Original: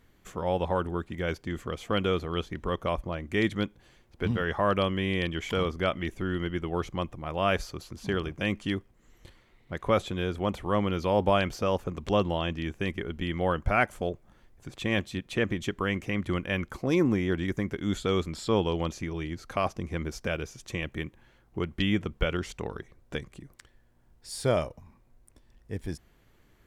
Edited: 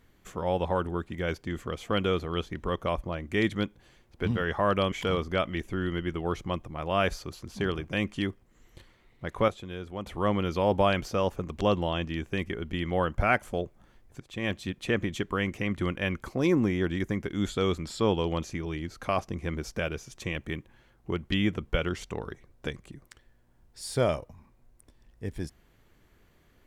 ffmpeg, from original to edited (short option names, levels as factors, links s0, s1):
-filter_complex "[0:a]asplit=5[s0][s1][s2][s3][s4];[s0]atrim=end=4.922[s5];[s1]atrim=start=5.398:end=9.962[s6];[s2]atrim=start=9.958:end=10.552,asetpts=PTS-STARTPTS,volume=0.398[s7];[s3]atrim=start=10.548:end=14.68,asetpts=PTS-STARTPTS,afade=t=out:st=4.128:d=0.004:c=hsin:silence=0.211349[s8];[s4]atrim=start=14.68,asetpts=PTS-STARTPTS,afade=t=in:d=0.43:silence=0.211349[s9];[s5][s6]acrossfade=d=0.004:c1=hsin:c2=hsin[s10];[s10][s7]acrossfade=d=0.004:c1=hsin:c2=hsin[s11];[s8][s9]concat=n=2:v=0:a=1[s12];[s11][s12]acrossfade=d=0.004:c1=hsin:c2=hsin"